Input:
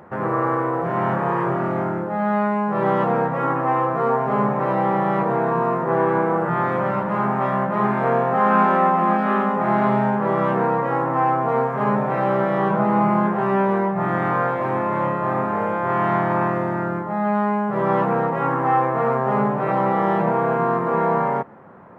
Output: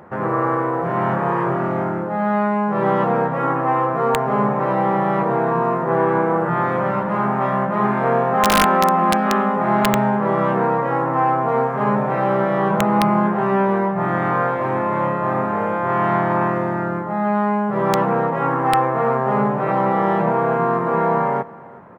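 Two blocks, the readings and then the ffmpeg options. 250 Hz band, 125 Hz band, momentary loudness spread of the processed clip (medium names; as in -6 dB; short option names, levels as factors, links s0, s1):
+1.5 dB, +1.5 dB, 4 LU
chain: -af "aecho=1:1:372:0.0794,aeval=exprs='(mod(2.51*val(0)+1,2)-1)/2.51':c=same,volume=1.19"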